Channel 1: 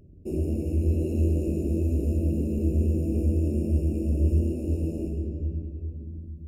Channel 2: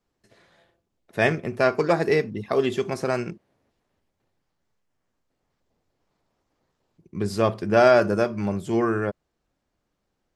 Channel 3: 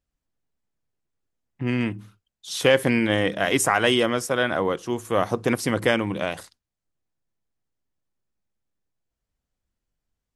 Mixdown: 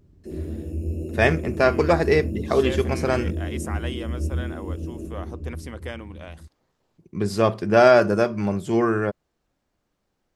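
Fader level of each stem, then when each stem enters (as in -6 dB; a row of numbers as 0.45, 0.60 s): -4.0, +2.0, -14.5 dB; 0.00, 0.00, 0.00 s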